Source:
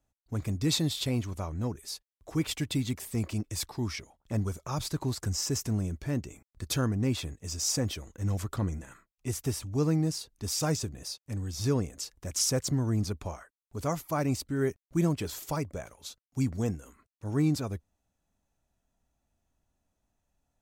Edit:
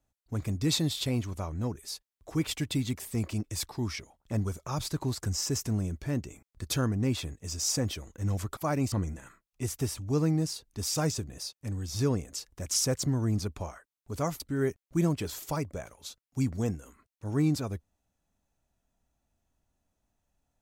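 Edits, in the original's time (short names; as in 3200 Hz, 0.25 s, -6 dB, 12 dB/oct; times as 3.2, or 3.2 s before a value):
14.05–14.4 move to 8.57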